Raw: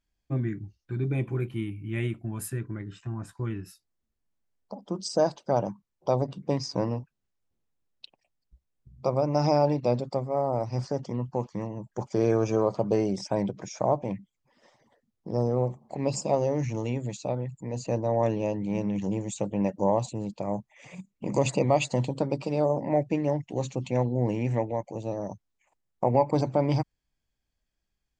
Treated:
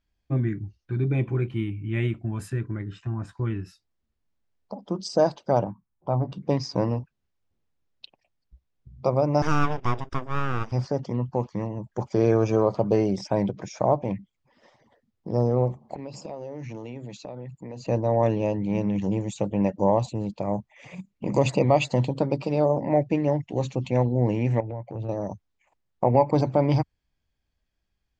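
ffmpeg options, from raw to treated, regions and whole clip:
ffmpeg -i in.wav -filter_complex "[0:a]asettb=1/sr,asplit=3[link_01][link_02][link_03];[link_01]atrim=end=5.644[link_04];[link_02]atrim=start=5.64:end=6.32,asetpts=PTS-STARTPTS,afade=type=in:duration=0.004:curve=qsin,afade=type=out:start_time=0.676:duration=0.004:curve=qsin,lowpass=1300,equalizer=frequency=480:width=1.4:gain=-9.5,asplit=2[link_05][link_06];[link_06]adelay=17,volume=-9dB[link_07];[link_05][link_07]amix=inputs=2:normalize=0,atrim=end_sample=29988[link_08];[link_03]atrim=start=6.316[link_09];[link_04][link_08]acrossfade=duration=0.004:curve1=hsin:curve2=qsin[link_10];[link_10][link_09]acrossfade=duration=0.004:curve1=qsin:curve2=hsin,asettb=1/sr,asplit=3[link_11][link_12][link_13];[link_11]atrim=end=9.424[link_14];[link_12]atrim=start=9.42:end=10.72,asetpts=PTS-STARTPTS,afade=type=in:duration=0.004:curve=qsin,afade=type=out:start_time=1.296:duration=0.004:curve=qsin,bass=frequency=250:gain=-9,treble=frequency=4000:gain=-2,aeval=exprs='abs(val(0))':channel_layout=same,asuperstop=centerf=4200:order=4:qfactor=5.2[link_15];[link_13]atrim=start=10.716[link_16];[link_14][link_15]acrossfade=duration=0.004:curve1=hsin:curve2=qsin[link_17];[link_17][link_16]acrossfade=duration=0.004:curve1=qsin:curve2=hsin,asettb=1/sr,asplit=3[link_18][link_19][link_20];[link_18]atrim=end=15.954[link_21];[link_19]atrim=start=15.95:end=17.86,asetpts=PTS-STARTPTS,afade=type=in:duration=0.004:curve=qsin,afade=type=out:start_time=1.906:duration=0.004:curve=qsin,highpass=150,lowpass=6500,acompressor=threshold=-37dB:ratio=5:attack=3.2:release=140:knee=1:detection=peak[link_22];[link_20]atrim=start=17.856[link_23];[link_21][link_22]acrossfade=duration=0.004:curve1=hsin:curve2=qsin[link_24];[link_24][link_23]acrossfade=duration=0.004:curve1=qsin:curve2=hsin,asettb=1/sr,asplit=3[link_25][link_26][link_27];[link_25]atrim=end=24.604[link_28];[link_26]atrim=start=24.6:end=25.09,asetpts=PTS-STARTPTS,afade=type=in:duration=0.004:curve=qsin,afade=type=out:start_time=0.486:duration=0.004:curve=qsin,lowpass=2900,acompressor=threshold=-34dB:ratio=10:attack=3.2:release=140:knee=1:detection=peak,equalizer=frequency=120:width_type=o:width=0.38:gain=9.5[link_29];[link_27]atrim=start=25.086[link_30];[link_28][link_29]acrossfade=duration=0.004:curve1=hsin:curve2=qsin[link_31];[link_31][link_30]acrossfade=duration=0.004:curve1=qsin:curve2=hsin,lowpass=5200,equalizer=frequency=80:width_type=o:width=0.81:gain=4.5,volume=3dB" out.wav

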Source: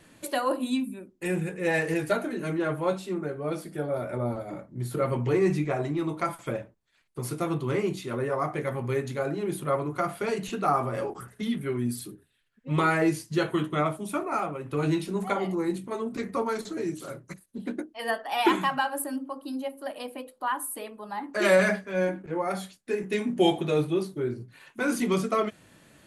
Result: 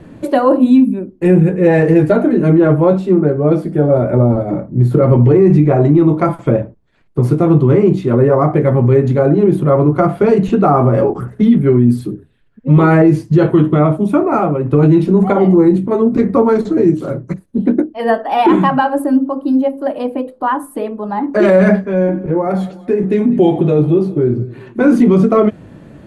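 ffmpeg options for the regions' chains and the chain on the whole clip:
ffmpeg -i in.wav -filter_complex "[0:a]asettb=1/sr,asplit=3[link_01][link_02][link_03];[link_01]atrim=end=21.844[link_04];[link_02]atrim=start=21.84:end=24.8,asetpts=PTS-STARTPTS,afade=type=in:duration=0.004:curve=qsin,afade=type=out:start_time=2.956:duration=0.004:curve=qsin,acompressor=threshold=-32dB:ratio=2:attack=3.2:release=140:knee=1:detection=peak,aecho=1:1:197|394|591|788:0.106|0.054|0.0276|0.0141,atrim=end_sample=130536[link_05];[link_03]atrim=start=24.796[link_06];[link_04][link_05]acrossfade=duration=0.004:curve1=hsin:curve2=qsin[link_07];[link_07][link_06]acrossfade=duration=0.004:curve1=qsin:curve2=hsin,lowpass=frequency=3300:poles=1,tiltshelf=frequency=930:gain=9,alimiter=level_in=14.5dB:limit=-1dB:release=50:level=0:latency=1,volume=-1dB" out.wav

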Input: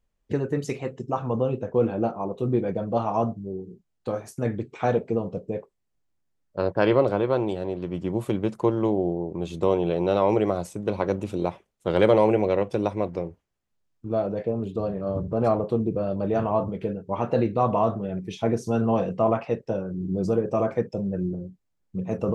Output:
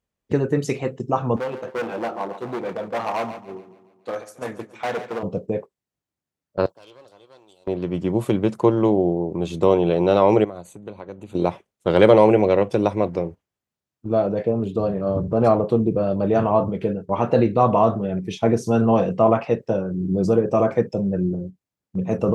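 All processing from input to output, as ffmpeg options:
ffmpeg -i in.wav -filter_complex "[0:a]asettb=1/sr,asplit=3[link_01][link_02][link_03];[link_01]atrim=end=1.364[link_04];[link_02]atrim=start=1.36:end=5.23,asetpts=PTS-STARTPTS,afade=type=in:duration=0.004:curve=qsin,afade=type=out:start_time=3.866:duration=0.004:curve=qsin,asoftclip=type=hard:threshold=-23.5dB,highpass=frequency=660:poles=1,aecho=1:1:141|282|423|564|705|846:0.282|0.155|0.0853|0.0469|0.0258|0.0142,atrim=end_sample=170667[link_05];[link_03]atrim=start=5.226[link_06];[link_04][link_05]acrossfade=duration=0.004:curve1=hsin:curve2=qsin[link_07];[link_07][link_06]acrossfade=duration=0.004:curve1=qsin:curve2=hsin,asettb=1/sr,asplit=3[link_08][link_09][link_10];[link_08]atrim=end=6.664[link_11];[link_09]atrim=start=6.66:end=7.67,asetpts=PTS-STARTPTS,afade=type=in:duration=0.004:curve=qsin,afade=type=out:start_time=1.006:duration=0.004:curve=qsin,asuperstop=centerf=1900:order=4:qfactor=1.4,aderivative,aeval=exprs='(tanh(89.1*val(0)+0.45)-tanh(0.45))/89.1':channel_layout=same[link_12];[link_10]atrim=start=7.666[link_13];[link_11][link_12]acrossfade=duration=0.004:curve1=hsin:curve2=qsin[link_14];[link_14][link_13]acrossfade=duration=0.004:curve1=qsin:curve2=hsin,asettb=1/sr,asplit=3[link_15][link_16][link_17];[link_15]atrim=end=10.444[link_18];[link_16]atrim=start=10.44:end=11.35,asetpts=PTS-STARTPTS,afade=type=in:duration=0.004:curve=qsin,afade=type=out:start_time=0.906:duration=0.004:curve=qsin,asuperstop=centerf=5300:order=12:qfactor=4.7,acompressor=threshold=-35dB:ratio=6:attack=3.2:release=140:knee=1:detection=peak[link_19];[link_17]atrim=start=11.346[link_20];[link_18][link_19]acrossfade=duration=0.004:curve1=hsin:curve2=qsin[link_21];[link_21][link_20]acrossfade=duration=0.004:curve1=qsin:curve2=hsin,highpass=78,agate=range=-7dB:threshold=-38dB:ratio=16:detection=peak,volume=5.5dB" out.wav

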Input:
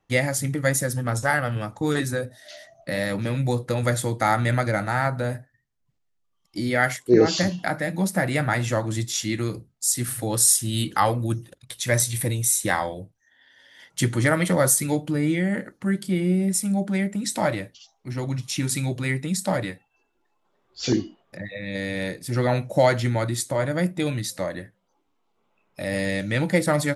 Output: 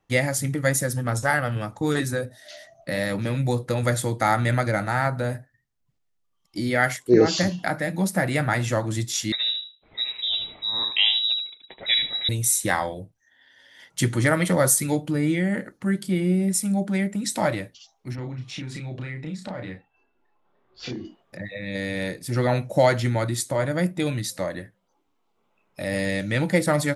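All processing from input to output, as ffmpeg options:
ffmpeg -i in.wav -filter_complex "[0:a]asettb=1/sr,asplit=3[link_01][link_02][link_03];[link_01]atrim=end=9.324[link_04];[link_02]atrim=start=9.32:end=12.29,asetpts=PTS-STARTPTS,afade=type=in:duration=0.004:curve=qsin,afade=type=out:start_time=2.966:duration=0.004:curve=qsin,equalizer=frequency=2600:width_type=o:width=0.42:gain=-7.5,aecho=1:1:77|154|231:0.447|0.0804|0.0145,atrim=end_sample=130977,lowpass=frequency=3400:width_type=q:width=0.5098,lowpass=frequency=3400:width_type=q:width=0.6013,lowpass=frequency=3400:width_type=q:width=0.9,lowpass=frequency=3400:width_type=q:width=2.563,afreqshift=-4000[link_05];[link_03]atrim=start=12.286[link_06];[link_04][link_05]acrossfade=duration=0.004:curve1=hsin:curve2=qsin[link_07];[link_07][link_06]acrossfade=duration=0.004:curve1=qsin:curve2=hsin,asettb=1/sr,asplit=3[link_08][link_09][link_10];[link_08]atrim=end=18.154[link_11];[link_09]atrim=start=18.15:end=21.05,asetpts=PTS-STARTPTS,afade=type=in:duration=0.004:curve=qsin,afade=type=out:start_time=2.896:duration=0.004:curve=qsin,lowpass=3000,acompressor=threshold=-31dB:ratio=6:attack=3.2:release=140:knee=1:detection=peak,asplit=2[link_12][link_13];[link_13]adelay=32,volume=-3.5dB[link_14];[link_12][link_14]amix=inputs=2:normalize=0,atrim=end_sample=127890[link_15];[link_10]atrim=start=21.046[link_16];[link_11][link_15]acrossfade=duration=0.004:curve1=hsin:curve2=qsin[link_17];[link_17][link_16]acrossfade=duration=0.004:curve1=qsin:curve2=hsin" out.wav

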